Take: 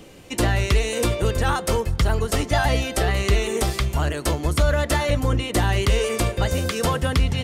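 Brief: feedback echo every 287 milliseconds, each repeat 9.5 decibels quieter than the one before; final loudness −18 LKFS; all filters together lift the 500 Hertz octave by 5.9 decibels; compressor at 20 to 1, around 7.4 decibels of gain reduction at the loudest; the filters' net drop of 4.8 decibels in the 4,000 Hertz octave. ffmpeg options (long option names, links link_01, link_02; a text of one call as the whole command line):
ffmpeg -i in.wav -af "equalizer=frequency=500:width_type=o:gain=7,equalizer=frequency=4000:width_type=o:gain=-7,acompressor=threshold=-20dB:ratio=20,aecho=1:1:287|574|861|1148:0.335|0.111|0.0365|0.012,volume=7dB" out.wav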